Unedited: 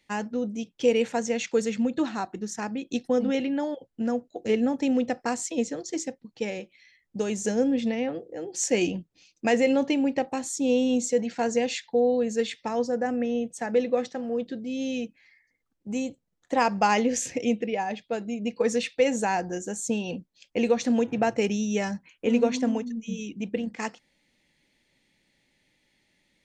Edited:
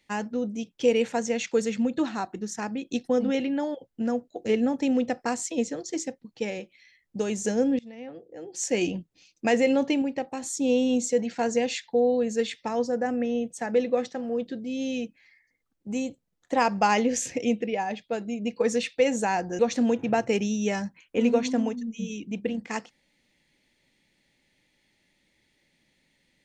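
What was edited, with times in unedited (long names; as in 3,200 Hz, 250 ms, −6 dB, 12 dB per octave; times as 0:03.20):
0:07.79–0:08.99: fade in, from −23.5 dB
0:10.02–0:10.42: clip gain −4 dB
0:19.59–0:20.68: remove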